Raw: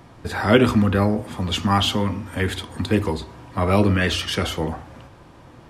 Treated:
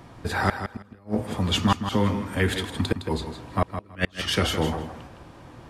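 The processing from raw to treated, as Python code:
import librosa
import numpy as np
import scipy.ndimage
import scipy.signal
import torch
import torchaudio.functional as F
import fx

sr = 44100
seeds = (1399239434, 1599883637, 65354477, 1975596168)

y = fx.gate_flip(x, sr, shuts_db=-9.0, range_db=-36)
y = fx.echo_feedback(y, sr, ms=162, feedback_pct=17, wet_db=-9)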